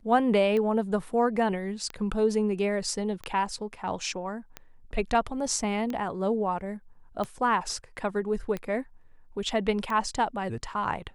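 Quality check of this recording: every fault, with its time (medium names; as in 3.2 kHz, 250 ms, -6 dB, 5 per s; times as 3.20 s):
tick 45 rpm -20 dBFS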